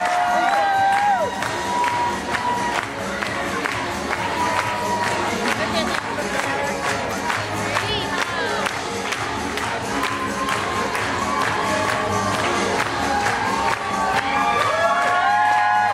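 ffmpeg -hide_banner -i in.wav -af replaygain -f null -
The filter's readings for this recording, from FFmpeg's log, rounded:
track_gain = +2.4 dB
track_peak = 0.367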